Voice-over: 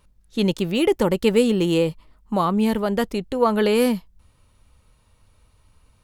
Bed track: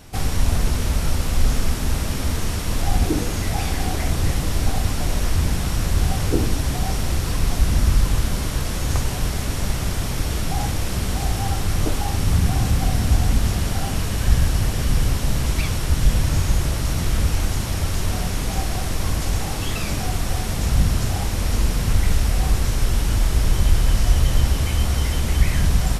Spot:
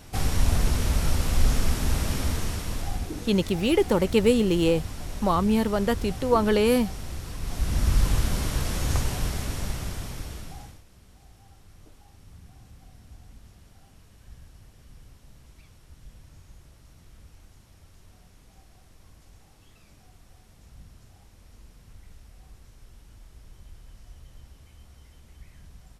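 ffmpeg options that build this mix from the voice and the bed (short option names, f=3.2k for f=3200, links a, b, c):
-filter_complex "[0:a]adelay=2900,volume=-2.5dB[a];[1:a]volume=7dB,afade=t=out:st=2.14:d=0.92:silence=0.298538,afade=t=in:st=7.4:d=0.65:silence=0.316228,afade=t=out:st=8.92:d=1.91:silence=0.0421697[b];[a][b]amix=inputs=2:normalize=0"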